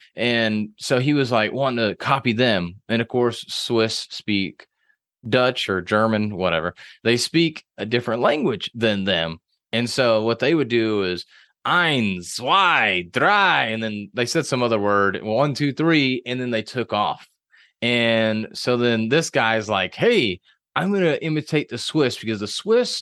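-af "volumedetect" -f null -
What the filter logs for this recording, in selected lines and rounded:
mean_volume: -21.2 dB
max_volume: -2.5 dB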